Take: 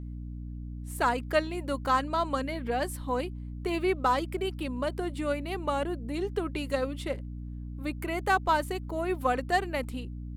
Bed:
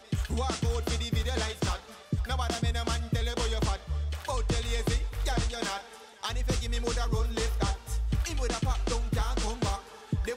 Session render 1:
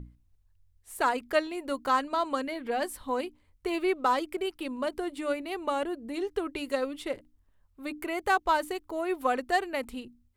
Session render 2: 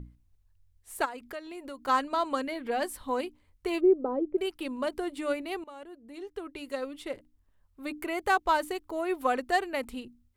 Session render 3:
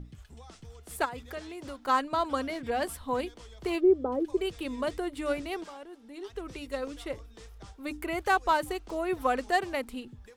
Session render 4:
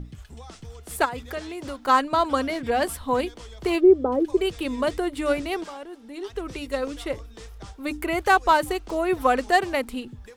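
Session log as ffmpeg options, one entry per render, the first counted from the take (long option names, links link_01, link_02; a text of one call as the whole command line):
ffmpeg -i in.wav -af "bandreject=frequency=60:width_type=h:width=6,bandreject=frequency=120:width_type=h:width=6,bandreject=frequency=180:width_type=h:width=6,bandreject=frequency=240:width_type=h:width=6,bandreject=frequency=300:width_type=h:width=6" out.wav
ffmpeg -i in.wav -filter_complex "[0:a]asplit=3[link_01][link_02][link_03];[link_01]afade=type=out:start_time=1.04:duration=0.02[link_04];[link_02]acompressor=threshold=-40dB:ratio=3:attack=3.2:release=140:knee=1:detection=peak,afade=type=in:start_time=1.04:duration=0.02,afade=type=out:start_time=1.87:duration=0.02[link_05];[link_03]afade=type=in:start_time=1.87:duration=0.02[link_06];[link_04][link_05][link_06]amix=inputs=3:normalize=0,asplit=3[link_07][link_08][link_09];[link_07]afade=type=out:start_time=3.79:duration=0.02[link_10];[link_08]lowpass=frequency=420:width_type=q:width=2.1,afade=type=in:start_time=3.79:duration=0.02,afade=type=out:start_time=4.36:duration=0.02[link_11];[link_09]afade=type=in:start_time=4.36:duration=0.02[link_12];[link_10][link_11][link_12]amix=inputs=3:normalize=0,asplit=2[link_13][link_14];[link_13]atrim=end=5.64,asetpts=PTS-STARTPTS,afade=type=out:start_time=5.636:duration=0.004:curve=hsin:silence=0.112202[link_15];[link_14]atrim=start=5.64,asetpts=PTS-STARTPTS,afade=type=in:duration=2.19:silence=0.112202[link_16];[link_15][link_16]concat=n=2:v=0:a=1" out.wav
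ffmpeg -i in.wav -i bed.wav -filter_complex "[1:a]volume=-19.5dB[link_01];[0:a][link_01]amix=inputs=2:normalize=0" out.wav
ffmpeg -i in.wav -af "volume=7dB" out.wav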